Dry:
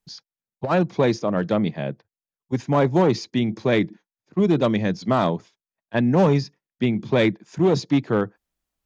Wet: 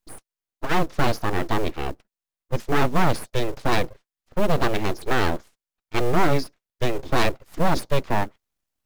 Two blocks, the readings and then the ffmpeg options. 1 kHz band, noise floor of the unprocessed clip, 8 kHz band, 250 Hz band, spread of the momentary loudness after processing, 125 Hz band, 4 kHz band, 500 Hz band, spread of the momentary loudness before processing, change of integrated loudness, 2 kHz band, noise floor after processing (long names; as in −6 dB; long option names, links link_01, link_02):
+2.5 dB, below −85 dBFS, can't be measured, −7.0 dB, 11 LU, −3.5 dB, +1.5 dB, −4.5 dB, 11 LU, −3.0 dB, +3.0 dB, below −85 dBFS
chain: -af "aeval=exprs='abs(val(0))':channel_layout=same,acrusher=bits=7:mode=log:mix=0:aa=0.000001,volume=1.5dB"